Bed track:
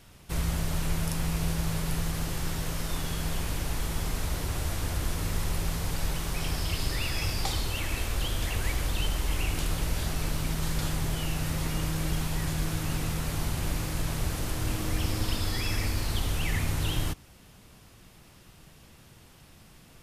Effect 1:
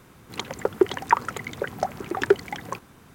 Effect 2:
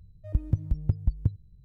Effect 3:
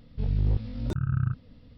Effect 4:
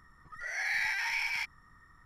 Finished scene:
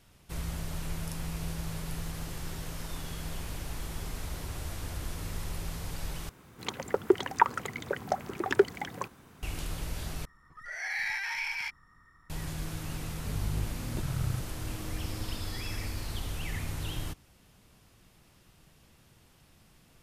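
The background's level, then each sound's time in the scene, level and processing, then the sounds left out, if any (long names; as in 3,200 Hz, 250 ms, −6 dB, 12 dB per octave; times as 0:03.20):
bed track −7 dB
0:01.72: mix in 1 −14.5 dB + downward compressor, threshold −40 dBFS
0:06.29: overwrite with 1 −4 dB
0:10.25: overwrite with 4 −1.5 dB
0:13.07: mix in 3 −6.5 dB + high-pass filter 49 Hz
not used: 2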